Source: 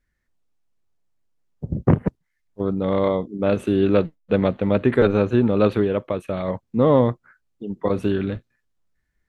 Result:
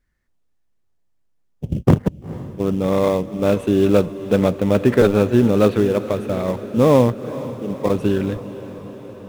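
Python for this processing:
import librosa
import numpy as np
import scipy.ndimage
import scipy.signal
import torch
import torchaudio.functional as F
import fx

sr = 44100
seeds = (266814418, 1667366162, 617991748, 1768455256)

p1 = fx.sample_hold(x, sr, seeds[0], rate_hz=3000.0, jitter_pct=20)
p2 = x + F.gain(torch.from_numpy(p1), -11.5).numpy()
p3 = fx.echo_diffused(p2, sr, ms=463, feedback_pct=69, wet_db=-15)
y = F.gain(torch.from_numpy(p3), 1.0).numpy()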